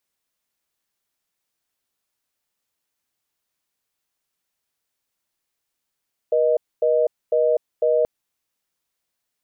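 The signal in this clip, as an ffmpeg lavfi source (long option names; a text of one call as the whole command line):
ffmpeg -f lavfi -i "aevalsrc='0.126*(sin(2*PI*480*t)+sin(2*PI*620*t))*clip(min(mod(t,0.5),0.25-mod(t,0.5))/0.005,0,1)':duration=1.73:sample_rate=44100" out.wav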